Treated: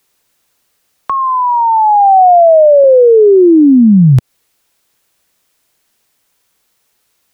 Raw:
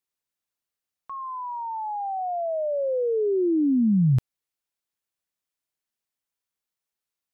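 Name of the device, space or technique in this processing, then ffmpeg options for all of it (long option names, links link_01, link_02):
mastering chain: -filter_complex "[0:a]asettb=1/sr,asplit=3[link_01][link_02][link_03];[link_01]atrim=end=1.614[link_04];[link_02]atrim=start=1.61:end=2.84,asetpts=PTS-STARTPTS,afade=type=in:duration=0.004:curve=qsin,afade=type=out:start_time=1.226:duration=0.004:curve=qsin,bass=frequency=250:gain=11,treble=frequency=4000:gain=-3[link_05];[link_03]atrim=start=2.836[link_06];[link_04][link_05]acrossfade=duration=0.004:curve1=hsin:curve2=qsin[link_07];[link_07][link_06]acrossfade=duration=0.004:curve1=qsin:curve2=hsin,equalizer=frequency=460:width_type=o:width=0.77:gain=2,acrossover=split=150|760[link_08][link_09][link_10];[link_08]acompressor=threshold=-26dB:ratio=4[link_11];[link_09]acompressor=threshold=-28dB:ratio=4[link_12];[link_10]acompressor=threshold=-45dB:ratio=4[link_13];[link_11][link_12][link_13]amix=inputs=3:normalize=0,acompressor=threshold=-25dB:ratio=6,alimiter=level_in=27.5dB:limit=-1dB:release=50:level=0:latency=1,volume=-1dB"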